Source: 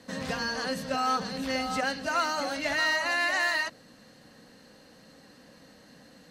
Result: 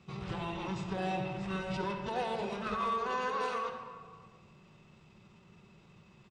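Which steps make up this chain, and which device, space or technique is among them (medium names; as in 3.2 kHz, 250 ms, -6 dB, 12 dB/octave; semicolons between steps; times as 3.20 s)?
monster voice (pitch shift -5.5 st; formant shift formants -3 st; bass shelf 120 Hz +5.5 dB; reverberation RT60 1.6 s, pre-delay 47 ms, DRR 5 dB); trim -7.5 dB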